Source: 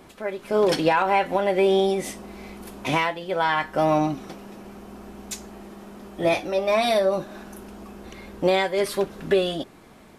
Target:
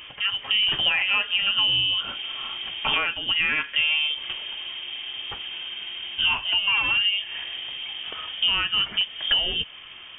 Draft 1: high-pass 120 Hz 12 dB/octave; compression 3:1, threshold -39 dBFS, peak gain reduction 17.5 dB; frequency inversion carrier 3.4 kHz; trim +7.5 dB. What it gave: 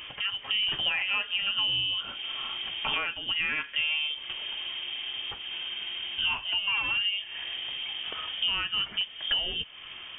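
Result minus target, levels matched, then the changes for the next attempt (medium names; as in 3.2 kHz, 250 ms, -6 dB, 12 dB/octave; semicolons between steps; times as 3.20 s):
compression: peak gain reduction +6 dB
change: compression 3:1, threshold -30 dBFS, peak gain reduction 11.5 dB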